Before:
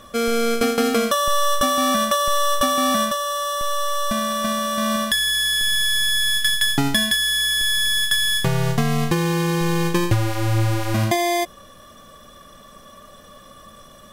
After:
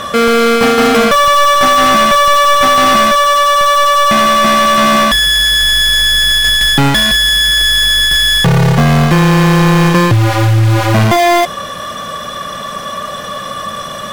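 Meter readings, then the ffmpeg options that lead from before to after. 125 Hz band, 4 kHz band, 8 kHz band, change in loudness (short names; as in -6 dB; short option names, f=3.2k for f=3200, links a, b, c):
+12.0 dB, +10.5 dB, +6.0 dB, +11.0 dB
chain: -filter_complex "[0:a]lowshelf=f=210:t=q:w=1.5:g=6,asplit=2[a][b];[b]highpass=f=720:p=1,volume=31dB,asoftclip=type=tanh:threshold=-2.5dB[c];[a][c]amix=inputs=2:normalize=0,lowpass=f=3.2k:p=1,volume=-6dB,volume=1.5dB"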